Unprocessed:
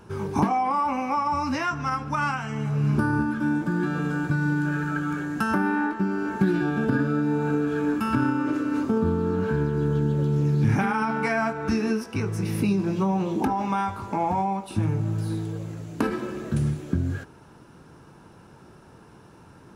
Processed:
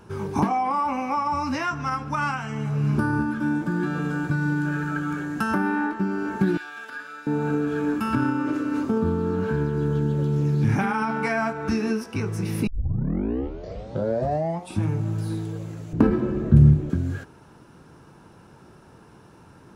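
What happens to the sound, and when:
0:06.57–0:07.27: high-pass filter 1,500 Hz
0:12.67: tape start 2.15 s
0:15.93–0:16.90: spectral tilt −4 dB per octave

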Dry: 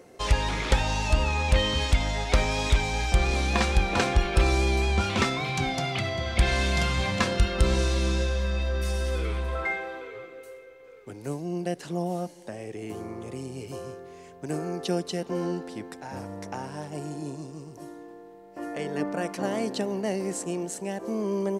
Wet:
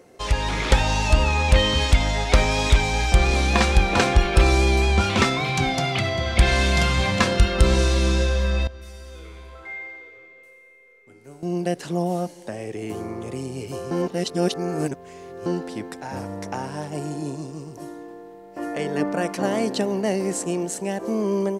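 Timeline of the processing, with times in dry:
0:08.67–0:11.43: tuned comb filter 81 Hz, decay 1.9 s, mix 90%
0:13.91–0:15.46: reverse
whole clip: automatic gain control gain up to 5.5 dB

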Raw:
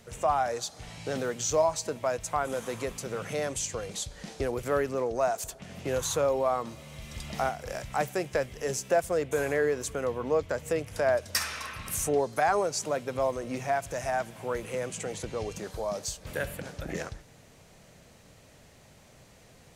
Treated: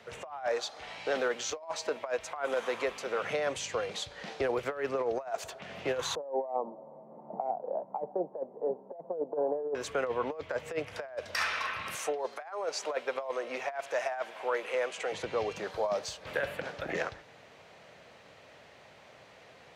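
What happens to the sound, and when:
0:00.47–0:03.24: parametric band 130 Hz −14.5 dB
0:06.15–0:09.75: Chebyshev band-pass filter 170–920 Hz, order 4
0:11.95–0:15.12: high-pass filter 400 Hz
whole clip: high-pass filter 82 Hz; three-way crossover with the lows and the highs turned down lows −13 dB, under 410 Hz, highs −20 dB, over 4,200 Hz; compressor whose output falls as the input rises −33 dBFS, ratio −0.5; level +2 dB

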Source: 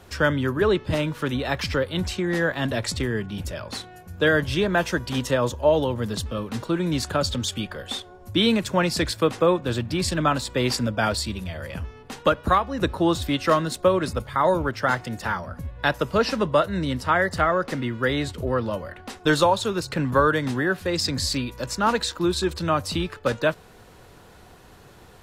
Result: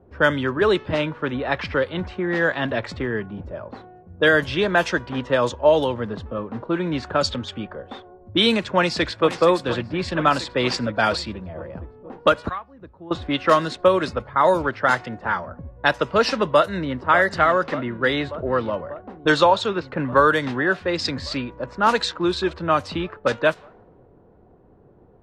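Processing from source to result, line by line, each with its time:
0:08.73–0:09.27: delay throw 470 ms, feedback 80%, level −13 dB
0:12.49–0:13.11: guitar amp tone stack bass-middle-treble 5-5-5
0:16.43–0:16.99: delay throw 590 ms, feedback 80%, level −12.5 dB
0:19.32–0:19.87: low-pass filter 4,500 Hz
whole clip: low-pass filter 10,000 Hz 12 dB per octave; low-shelf EQ 220 Hz −10.5 dB; low-pass that shuts in the quiet parts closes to 390 Hz, open at −18 dBFS; level +4.5 dB

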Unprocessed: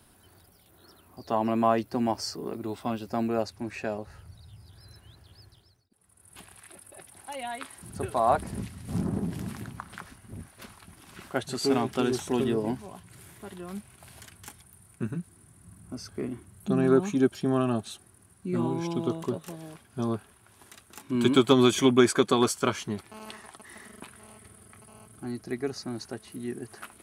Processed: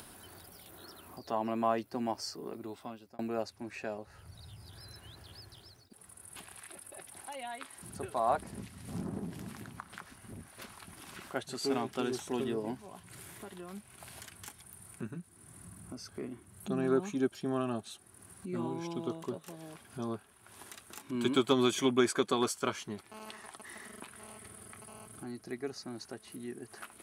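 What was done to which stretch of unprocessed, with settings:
0:02.58–0:03.19: fade out
whole clip: low-shelf EQ 170 Hz −7.5 dB; upward compression, threshold −34 dBFS; level −6 dB

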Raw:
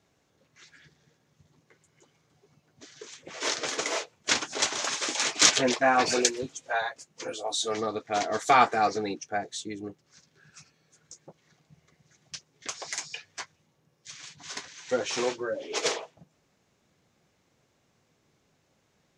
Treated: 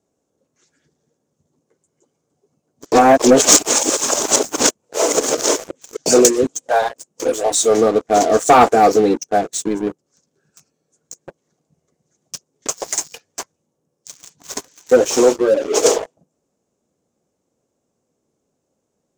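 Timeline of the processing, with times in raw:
0:02.92–0:06.06: reverse
whole clip: graphic EQ with 10 bands 125 Hz −3 dB, 250 Hz +6 dB, 500 Hz +7 dB, 2,000 Hz −9 dB, 4,000 Hz −7 dB, 8,000 Hz +9 dB; leveller curve on the samples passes 3

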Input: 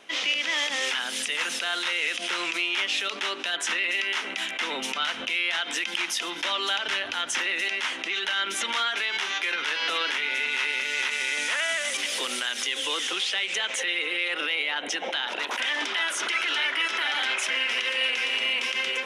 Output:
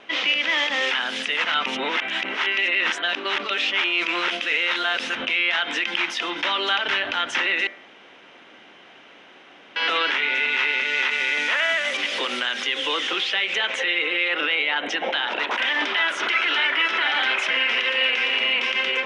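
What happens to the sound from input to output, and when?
0:01.44–0:05.15: reverse
0:07.67–0:09.76: fill with room tone
whole clip: low-pass filter 3,100 Hz 12 dB per octave; hum removal 84.33 Hz, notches 28; level +6.5 dB

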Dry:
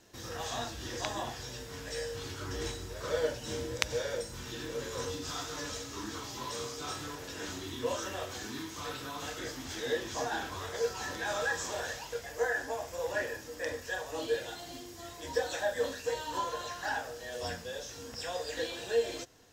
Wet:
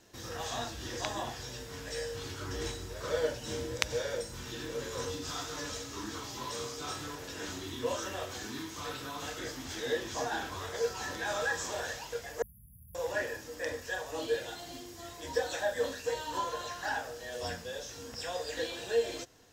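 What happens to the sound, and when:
0:12.42–0:12.95: linear-phase brick-wall band-stop 220–10,000 Hz

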